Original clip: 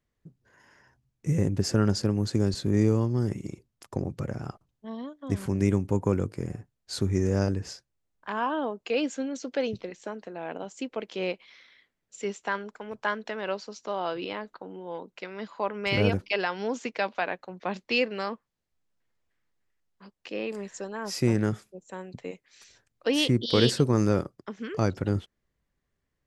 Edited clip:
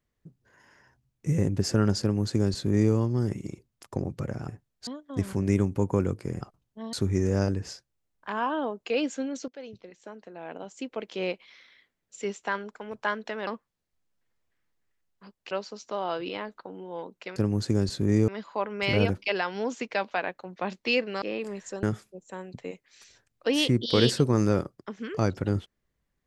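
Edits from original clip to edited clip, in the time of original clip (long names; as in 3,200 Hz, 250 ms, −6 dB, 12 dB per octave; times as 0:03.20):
0:02.01–0:02.93: duplicate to 0:15.32
0:04.48–0:05.00: swap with 0:06.54–0:06.93
0:09.48–0:11.18: fade in, from −17.5 dB
0:18.26–0:20.30: move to 0:13.47
0:20.91–0:21.43: remove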